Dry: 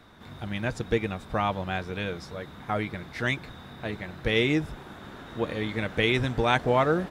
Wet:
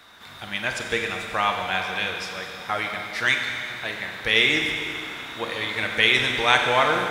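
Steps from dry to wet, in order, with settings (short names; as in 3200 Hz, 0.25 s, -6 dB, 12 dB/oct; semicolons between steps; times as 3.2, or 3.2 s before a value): tilt shelf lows -10 dB, about 650 Hz; crackle 110/s -53 dBFS; Schroeder reverb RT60 2.6 s, combs from 32 ms, DRR 2.5 dB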